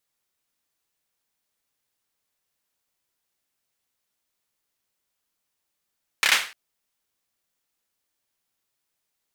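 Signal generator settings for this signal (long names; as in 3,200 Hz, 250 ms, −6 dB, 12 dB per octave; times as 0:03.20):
synth clap length 0.30 s, apart 29 ms, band 2,100 Hz, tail 0.37 s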